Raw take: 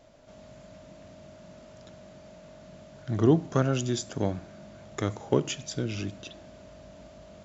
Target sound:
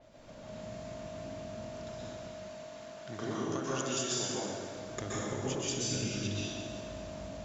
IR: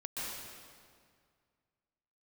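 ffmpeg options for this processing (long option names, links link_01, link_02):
-filter_complex "[0:a]asettb=1/sr,asplit=3[link_01][link_02][link_03];[link_01]atrim=end=2.074[link_04];[link_02]atrim=start=2.07:end=4.77,asetpts=PTS-STARTPTS,afade=type=in:duration=0.004:curve=qsin,afade=type=out:start_time=2.696:duration=0.004:curve=qsin,highpass=frequency=660:poles=1[link_05];[link_03]atrim=start=4.766[link_06];[link_04][link_05]acrossfade=duration=0.004:curve1=hsin:curve2=qsin[link_07];[link_07][link_06]acrossfade=duration=0.004:curve1=qsin:curve2=hsin,acompressor=threshold=-36dB:ratio=6[link_08];[1:a]atrim=start_sample=2205[link_09];[link_08][link_09]afir=irnorm=-1:irlink=0,adynamicequalizer=threshold=0.00126:dfrequency=4600:dqfactor=0.7:tfrequency=4600:tqfactor=0.7:attack=5:release=100:ratio=0.375:range=3.5:mode=boostabove:tftype=highshelf,volume=3.5dB"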